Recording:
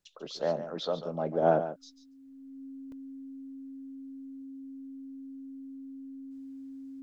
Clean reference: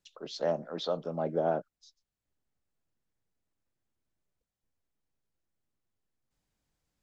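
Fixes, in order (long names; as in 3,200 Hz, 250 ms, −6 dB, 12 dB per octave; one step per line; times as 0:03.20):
notch filter 270 Hz, Q 30
repair the gap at 0:00.37/0:02.92, 2 ms
echo removal 142 ms −11.5 dB
level correction −5.5 dB, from 0:01.42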